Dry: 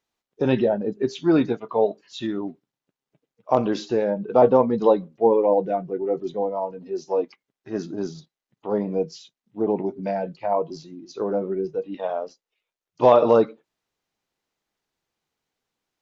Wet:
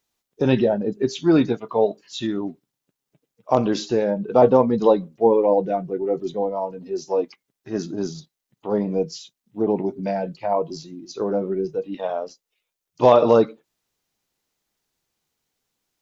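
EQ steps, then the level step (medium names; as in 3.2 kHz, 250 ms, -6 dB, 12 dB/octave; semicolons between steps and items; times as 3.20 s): bass shelf 250 Hz +5 dB; treble shelf 4.8 kHz +11.5 dB; 0.0 dB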